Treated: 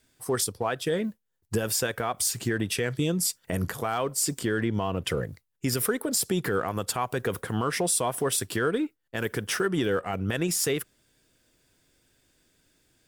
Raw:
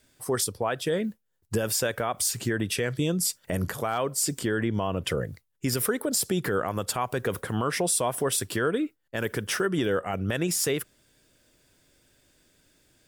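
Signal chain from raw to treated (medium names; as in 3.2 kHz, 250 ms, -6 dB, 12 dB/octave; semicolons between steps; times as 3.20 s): band-stop 580 Hz, Q 12; in parallel at -6.5 dB: crossover distortion -40.5 dBFS; on the sum: trim -3 dB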